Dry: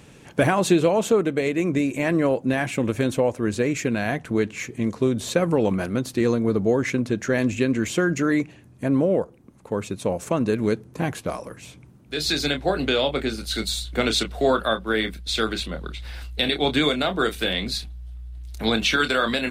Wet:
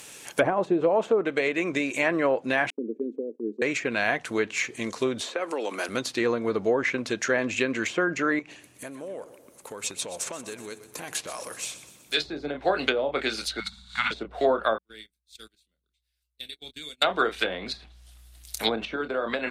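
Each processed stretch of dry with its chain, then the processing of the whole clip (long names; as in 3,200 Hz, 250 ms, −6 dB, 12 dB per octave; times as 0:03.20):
0:02.70–0:03.62: elliptic band-pass filter 220–440 Hz, stop band 50 dB + downward expander −37 dBFS
0:05.21–0:05.89: Butterworth high-pass 240 Hz + downward compressor 2.5 to 1, threshold −26 dBFS
0:08.39–0:12.14: downward compressor, threshold −31 dBFS + repeating echo 124 ms, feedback 55%, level −14.5 dB
0:13.60–0:14.11: Chebyshev band-stop filter 190–930 Hz, order 3 + flutter between parallel walls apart 10.3 metres, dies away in 0.77 s
0:14.78–0:17.02: noise gate −24 dBFS, range −25 dB + guitar amp tone stack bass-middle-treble 10-0-1
whole clip: RIAA equalisation recording; treble cut that deepens with the level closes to 590 Hz, closed at −16 dBFS; parametric band 170 Hz −5.5 dB 2.1 octaves; level +2.5 dB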